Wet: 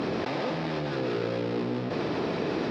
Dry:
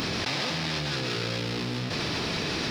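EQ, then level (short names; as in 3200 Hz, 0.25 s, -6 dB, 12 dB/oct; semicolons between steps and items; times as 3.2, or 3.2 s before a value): band-pass 440 Hz, Q 0.86; +6.0 dB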